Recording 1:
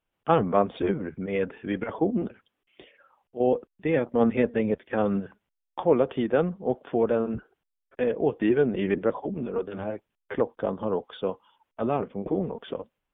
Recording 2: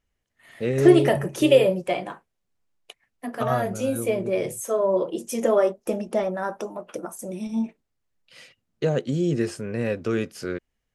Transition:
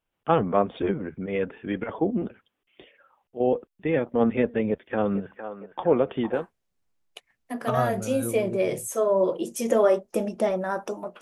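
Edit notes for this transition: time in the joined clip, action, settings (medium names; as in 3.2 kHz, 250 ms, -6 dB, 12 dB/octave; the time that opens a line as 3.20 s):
recording 1
4.69–6.46 s: band-passed feedback delay 459 ms, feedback 80%, band-pass 980 Hz, level -8 dB
6.38 s: go over to recording 2 from 2.11 s, crossfade 0.16 s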